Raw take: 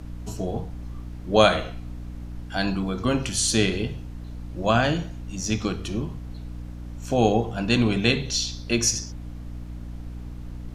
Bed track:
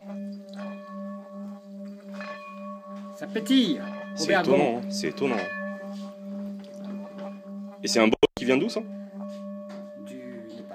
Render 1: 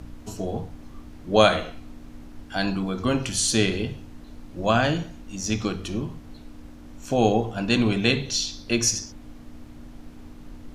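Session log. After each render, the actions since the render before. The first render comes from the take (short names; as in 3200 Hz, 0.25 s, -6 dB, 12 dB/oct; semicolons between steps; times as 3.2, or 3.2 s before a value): de-hum 60 Hz, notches 3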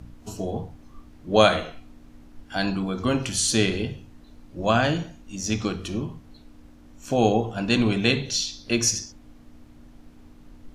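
noise print and reduce 6 dB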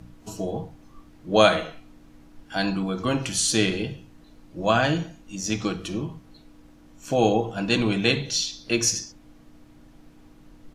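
low shelf 89 Hz -6 dB; comb 6.2 ms, depth 34%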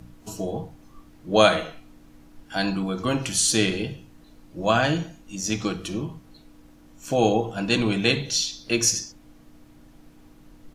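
high shelf 9900 Hz +7.5 dB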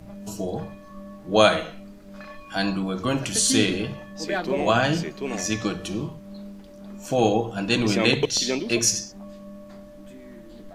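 add bed track -4.5 dB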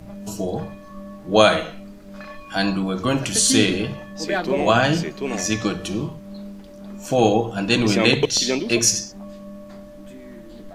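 gain +3.5 dB; limiter -1 dBFS, peak gain reduction 2 dB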